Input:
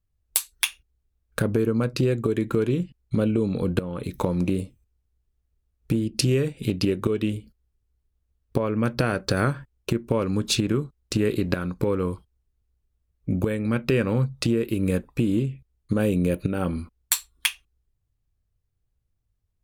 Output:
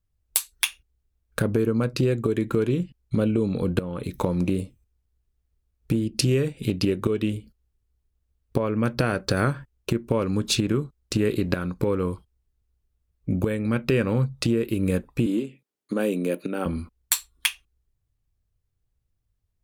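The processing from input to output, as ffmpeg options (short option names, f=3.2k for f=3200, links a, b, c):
-filter_complex "[0:a]asettb=1/sr,asplit=3[a][b][c];[a]atrim=end=15.264[d];[b]atrim=start=15.26:end=16.66,asetpts=PTS-STARTPTS,afade=t=in:d=0.004:c=qsin,afade=t=out:st=1.396:d=0.004:c=qsin,highpass=f=220:w=0.5412,highpass=f=220:w=1.3066[e];[c]atrim=start=16.656[f];[d][e]acrossfade=d=0.004:c1=hsin:c2=qsin[g];[g][f]acrossfade=d=0.004:c1=qsin:c2=hsin"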